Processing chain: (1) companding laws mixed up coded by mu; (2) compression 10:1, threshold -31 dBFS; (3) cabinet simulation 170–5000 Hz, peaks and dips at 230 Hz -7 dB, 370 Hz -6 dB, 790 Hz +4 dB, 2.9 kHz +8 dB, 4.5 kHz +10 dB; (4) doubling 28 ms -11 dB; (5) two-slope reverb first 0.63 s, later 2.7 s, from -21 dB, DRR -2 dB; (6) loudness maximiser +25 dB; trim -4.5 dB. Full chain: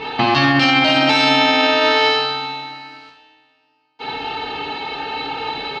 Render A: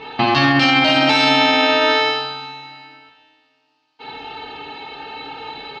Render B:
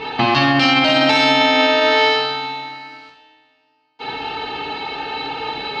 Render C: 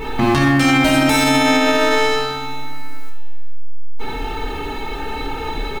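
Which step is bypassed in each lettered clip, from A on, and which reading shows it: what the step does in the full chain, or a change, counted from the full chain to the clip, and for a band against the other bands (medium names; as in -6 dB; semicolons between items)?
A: 1, distortion -22 dB; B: 4, 500 Hz band +1.5 dB; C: 3, crest factor change -3.0 dB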